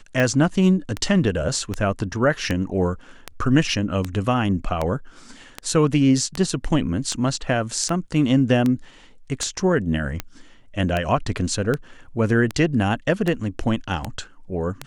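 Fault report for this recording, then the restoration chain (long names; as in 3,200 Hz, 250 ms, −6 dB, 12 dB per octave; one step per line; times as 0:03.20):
scratch tick 78 rpm −10 dBFS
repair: click removal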